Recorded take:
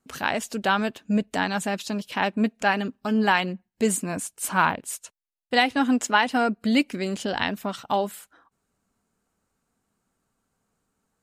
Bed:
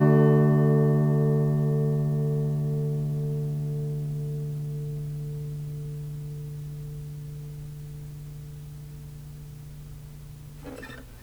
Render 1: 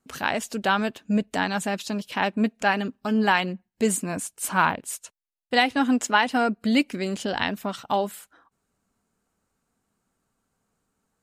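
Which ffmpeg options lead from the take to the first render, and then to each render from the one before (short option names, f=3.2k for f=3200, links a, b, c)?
-af anull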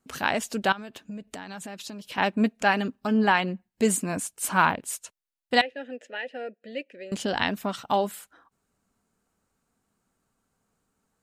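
-filter_complex "[0:a]asettb=1/sr,asplit=3[a][b][c];[a]atrim=end=0.724[d];[b]atrim=start=0.72:end=2.18,asetpts=PTS-STARTPTS,afade=t=in:d=0.004:c=qsin,afade=t=out:st=1.456:d=0.004:c=qsin,acompressor=threshold=-34dB:ratio=16:attack=3.2:release=140:knee=1:detection=peak[e];[c]atrim=start=2.176[f];[d][e]acrossfade=d=0.004:c1=hsin:c2=qsin[g];[g][f]acrossfade=d=0.004:c1=qsin:c2=hsin,asettb=1/sr,asplit=3[h][i][j];[h]atrim=end=3.074[k];[i]atrim=start=3.07:end=3.53,asetpts=PTS-STARTPTS,afade=t=in:d=0.004:c=qsin,afade=t=out:st=0.456:d=0.004:c=qsin,highshelf=f=4.2k:g=-8[l];[j]atrim=start=3.526[m];[k][l]acrossfade=d=0.004:c1=hsin:c2=qsin[n];[n][m]acrossfade=d=0.004:c1=qsin:c2=hsin,asettb=1/sr,asplit=3[o][p][q];[o]atrim=end=5.614[r];[p]atrim=start=5.61:end=7.12,asetpts=PTS-STARTPTS,afade=t=in:d=0.004:c=qsin,afade=t=out:st=1.506:d=0.004:c=qsin,asplit=3[s][t][u];[s]bandpass=f=530:t=q:w=8,volume=0dB[v];[t]bandpass=f=1.84k:t=q:w=8,volume=-6dB[w];[u]bandpass=f=2.48k:t=q:w=8,volume=-9dB[x];[v][w][x]amix=inputs=3:normalize=0[y];[q]atrim=start=7.116[z];[r][y]acrossfade=d=0.004:c1=hsin:c2=qsin[aa];[aa][z]acrossfade=d=0.004:c1=qsin:c2=hsin"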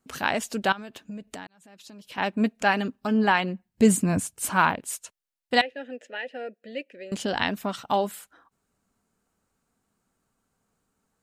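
-filter_complex "[0:a]asettb=1/sr,asplit=3[a][b][c];[a]atrim=end=3.694[d];[b]atrim=start=3.69:end=4.5,asetpts=PTS-STARTPTS,afade=t=in:d=0.004:c=qsin,afade=t=out:st=0.806:d=0.004:c=qsin,equalizer=f=85:t=o:w=2.4:g=15[e];[c]atrim=start=4.496[f];[d][e]acrossfade=d=0.004:c1=hsin:c2=qsin[g];[g][f]acrossfade=d=0.004:c1=qsin:c2=hsin,asplit=2[h][i];[h]atrim=end=1.47,asetpts=PTS-STARTPTS,afade=t=out:st=1.466:d=0.004:c=hsin[j];[i]atrim=start=1.47,asetpts=PTS-STARTPTS,afade=t=in:d=1.03[k];[j][k]concat=n=2:v=0:a=1"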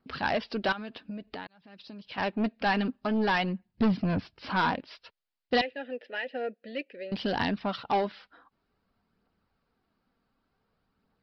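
-af "aresample=11025,asoftclip=type=tanh:threshold=-21dB,aresample=44100,aphaser=in_gain=1:out_gain=1:delay=4.4:decay=0.3:speed=0.54:type=triangular"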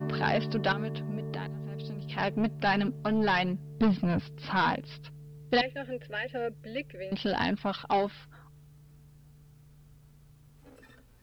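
-filter_complex "[1:a]volume=-14.5dB[a];[0:a][a]amix=inputs=2:normalize=0"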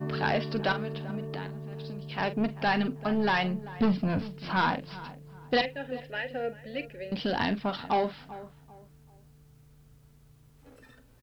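-filter_complex "[0:a]asplit=2[a][b];[b]adelay=43,volume=-12.5dB[c];[a][c]amix=inputs=2:normalize=0,asplit=2[d][e];[e]adelay=390,lowpass=f=1.6k:p=1,volume=-16dB,asplit=2[f][g];[g]adelay=390,lowpass=f=1.6k:p=1,volume=0.33,asplit=2[h][i];[i]adelay=390,lowpass=f=1.6k:p=1,volume=0.33[j];[d][f][h][j]amix=inputs=4:normalize=0"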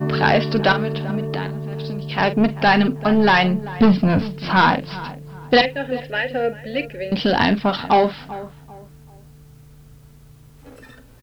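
-af "volume=11.5dB"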